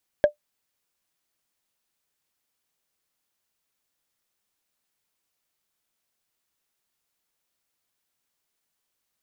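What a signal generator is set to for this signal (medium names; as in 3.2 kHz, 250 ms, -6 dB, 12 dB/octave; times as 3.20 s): wood hit, lowest mode 593 Hz, decay 0.11 s, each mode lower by 11.5 dB, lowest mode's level -8 dB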